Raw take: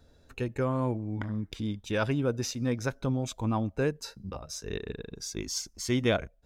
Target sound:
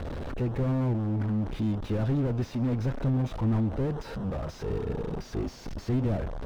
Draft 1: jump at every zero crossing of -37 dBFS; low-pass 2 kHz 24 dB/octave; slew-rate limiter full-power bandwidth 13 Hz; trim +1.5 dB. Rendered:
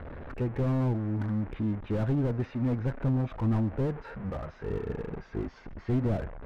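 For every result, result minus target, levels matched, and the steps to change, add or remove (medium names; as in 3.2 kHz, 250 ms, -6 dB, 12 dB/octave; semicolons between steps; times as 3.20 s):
4 kHz band -6.5 dB; jump at every zero crossing: distortion -6 dB
change: low-pass 5.4 kHz 24 dB/octave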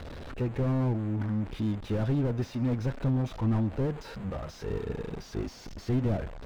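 jump at every zero crossing: distortion -6 dB
change: jump at every zero crossing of -29.5 dBFS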